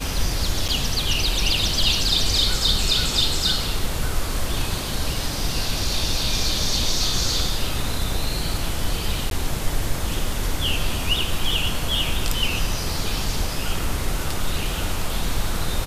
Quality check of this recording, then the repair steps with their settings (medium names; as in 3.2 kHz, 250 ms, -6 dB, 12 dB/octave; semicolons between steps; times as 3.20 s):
0.68–0.69 s: dropout 6.8 ms
9.30–9.31 s: dropout 12 ms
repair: interpolate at 0.68 s, 6.8 ms; interpolate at 9.30 s, 12 ms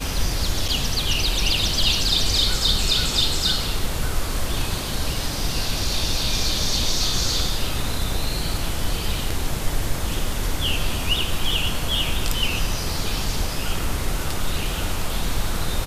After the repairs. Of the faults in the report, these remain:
nothing left